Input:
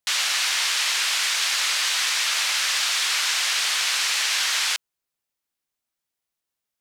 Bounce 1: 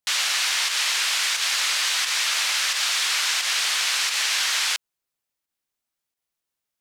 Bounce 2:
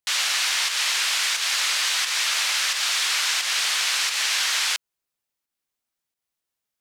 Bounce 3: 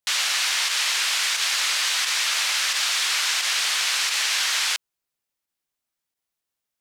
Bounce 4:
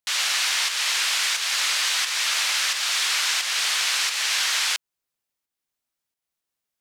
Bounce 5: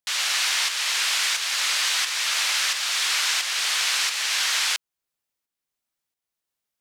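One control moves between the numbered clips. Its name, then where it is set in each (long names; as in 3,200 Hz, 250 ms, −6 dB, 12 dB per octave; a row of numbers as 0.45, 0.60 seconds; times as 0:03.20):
fake sidechain pumping, release: 115, 185, 66, 317, 530 milliseconds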